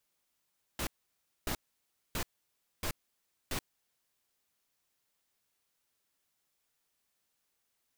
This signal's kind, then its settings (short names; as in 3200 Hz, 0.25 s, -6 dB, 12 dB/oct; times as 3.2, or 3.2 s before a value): noise bursts pink, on 0.08 s, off 0.60 s, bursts 5, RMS -34.5 dBFS